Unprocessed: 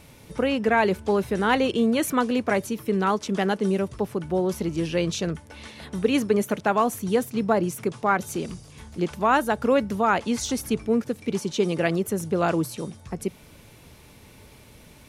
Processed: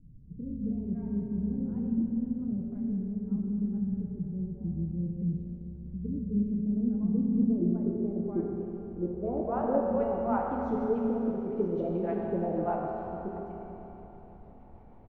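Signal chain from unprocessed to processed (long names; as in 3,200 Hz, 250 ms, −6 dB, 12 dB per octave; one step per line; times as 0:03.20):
rotating-speaker cabinet horn 1.1 Hz, later 6.3 Hz, at 0:02.94
background noise brown −45 dBFS
low-pass filter sweep 170 Hz → 780 Hz, 0:06.27–0:09.93
multiband delay without the direct sound lows, highs 240 ms, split 590 Hz
convolution reverb RT60 3.5 s, pre-delay 5 ms, DRR −2.5 dB
level −9 dB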